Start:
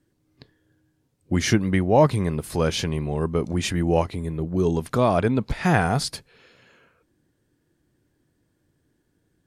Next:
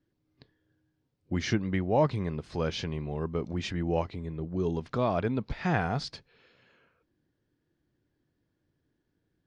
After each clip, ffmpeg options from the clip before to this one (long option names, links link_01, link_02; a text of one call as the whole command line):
ffmpeg -i in.wav -af "lowpass=frequency=5500:width=0.5412,lowpass=frequency=5500:width=1.3066,volume=-8dB" out.wav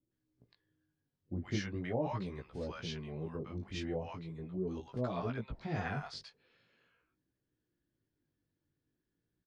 ffmpeg -i in.wav -filter_complex "[0:a]flanger=delay=15.5:depth=5.2:speed=0.41,acrossover=split=760[link_01][link_02];[link_02]adelay=110[link_03];[link_01][link_03]amix=inputs=2:normalize=0,volume=-5dB" out.wav